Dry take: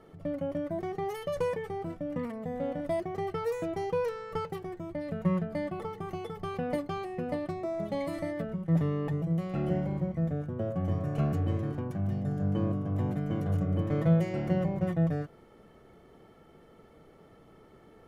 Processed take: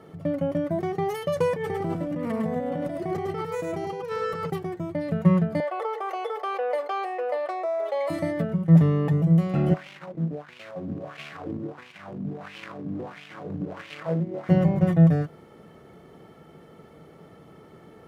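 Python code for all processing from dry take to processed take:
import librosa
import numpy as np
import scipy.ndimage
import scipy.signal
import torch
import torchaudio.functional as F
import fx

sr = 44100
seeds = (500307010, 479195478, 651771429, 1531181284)

y = fx.chain(x, sr, fx.over_compress(threshold_db=-38.0, ratio=-1.0),
    fx.echo_single(ms=105, db=-3.5), at=(1.56, 4.5))
y = fx.chain(y, sr, fx.ellip_highpass(hz=460.0, order=4, stop_db=60),
    fx.high_shelf(hz=3900.0, db=-11.5),
    fx.env_flatten(amount_pct=50), at=(5.6, 8.1))
y = fx.chain(y, sr, fx.quant_companded(bits=4),
    fx.wah_lfo(hz=1.5, low_hz=240.0, high_hz=2700.0, q=3.0), at=(9.74, 14.49))
y = scipy.signal.sosfilt(scipy.signal.butter(2, 77.0, 'highpass', fs=sr, output='sos'), y)
y = fx.peak_eq(y, sr, hz=160.0, db=5.5, octaves=0.32)
y = F.gain(torch.from_numpy(y), 6.5).numpy()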